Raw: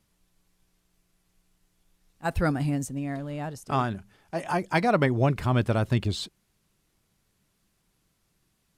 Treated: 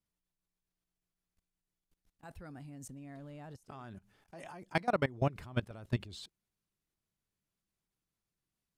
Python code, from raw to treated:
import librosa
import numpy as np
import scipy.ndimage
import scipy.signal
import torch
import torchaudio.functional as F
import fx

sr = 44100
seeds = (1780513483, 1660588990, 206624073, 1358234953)

y = fx.level_steps(x, sr, step_db=21)
y = y * librosa.db_to_amplitude(-6.0)